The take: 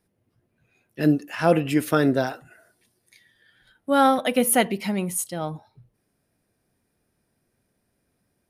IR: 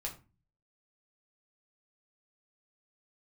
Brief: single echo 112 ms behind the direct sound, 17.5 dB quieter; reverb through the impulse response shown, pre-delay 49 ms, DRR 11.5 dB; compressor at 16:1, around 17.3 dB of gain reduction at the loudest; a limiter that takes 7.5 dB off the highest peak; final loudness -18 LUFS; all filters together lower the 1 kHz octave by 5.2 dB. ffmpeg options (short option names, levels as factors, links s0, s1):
-filter_complex "[0:a]equalizer=f=1000:t=o:g=-8,acompressor=threshold=0.0251:ratio=16,alimiter=level_in=1.88:limit=0.0631:level=0:latency=1,volume=0.531,aecho=1:1:112:0.133,asplit=2[s0][s1];[1:a]atrim=start_sample=2205,adelay=49[s2];[s1][s2]afir=irnorm=-1:irlink=0,volume=0.266[s3];[s0][s3]amix=inputs=2:normalize=0,volume=11.9"